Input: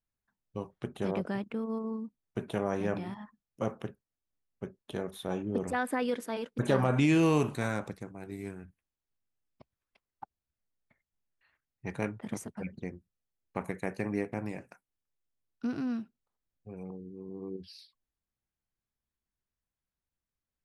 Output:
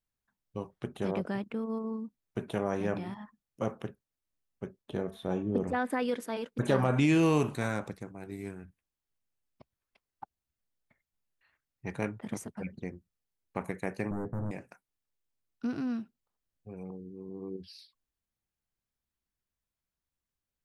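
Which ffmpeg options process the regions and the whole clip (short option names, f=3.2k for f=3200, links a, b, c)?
-filter_complex "[0:a]asettb=1/sr,asplit=3[a][b][c];[a]atrim=end=4.824[d];[b]atrim=start=4.82:end=5.9,asetpts=PTS-STARTPTS,afade=t=in:d=0.004:c=qsin,afade=t=out:st=1.076:d=0.004:c=qsin,acrossover=split=4500[e][f];[f]acompressor=threshold=-57dB:ratio=4:attack=1:release=60[g];[e][g]amix=inputs=2:normalize=0,tiltshelf=f=870:g=3,bandreject=f=223.9:t=h:w=4,bandreject=f=447.8:t=h:w=4,bandreject=f=671.7:t=h:w=4,bandreject=f=895.6:t=h:w=4,bandreject=f=1.1195k:t=h:w=4,bandreject=f=1.3434k:t=h:w=4,bandreject=f=1.5673k:t=h:w=4,bandreject=f=1.7912k:t=h:w=4,bandreject=f=2.0151k:t=h:w=4,bandreject=f=2.239k:t=h:w=4,bandreject=f=2.4629k:t=h:w=4,bandreject=f=2.6868k:t=h:w=4,bandreject=f=2.9107k:t=h:w=4,bandreject=f=3.1346k:t=h:w=4,bandreject=f=3.3585k:t=h:w=4,bandreject=f=3.5824k:t=h:w=4,bandreject=f=3.8063k:t=h:w=4,bandreject=f=4.0302k:t=h:w=4,bandreject=f=4.2541k:t=h:w=4,bandreject=f=4.478k:t=h:w=4,bandreject=f=4.7019k:t=h:w=4,bandreject=f=4.9258k:t=h:w=4,bandreject=f=5.1497k:t=h:w=4,bandreject=f=5.3736k:t=h:w=4,bandreject=f=5.5975k:t=h:w=4,bandreject=f=5.8214k:t=h:w=4,bandreject=f=6.0453k:t=h:w=4,bandreject=f=6.2692k:t=h:w=4,bandreject=f=6.4931k:t=h:w=4,bandreject=f=6.717k:t=h:w=4,bandreject=f=6.9409k:t=h:w=4,bandreject=f=7.1648k:t=h:w=4,bandreject=f=7.3887k:t=h:w=4,bandreject=f=7.6126k:t=h:w=4,bandreject=f=7.8365k:t=h:w=4,bandreject=f=8.0604k:t=h:w=4[h];[c]atrim=start=5.896[i];[d][h]acrossfade=d=0.004:c1=hsin:c2=qsin[j];[j][i]acrossfade=d=0.004:c1=qsin:c2=hsin,asettb=1/sr,asplit=3[k][l][m];[k]atrim=end=14.114[n];[l]atrim=start=14.11:end=14.51,asetpts=PTS-STARTPTS,afade=t=in:d=0.004:c=qsin,afade=t=out:st=0.396:d=0.004:c=qsin,aemphasis=mode=reproduction:type=riaa,asoftclip=type=hard:threshold=-32dB,asuperstop=centerf=3500:order=8:qfactor=0.59[o];[m]atrim=start=14.506[p];[n][o]acrossfade=d=0.004:c1=hsin:c2=qsin[q];[q][p]acrossfade=d=0.004:c1=qsin:c2=hsin"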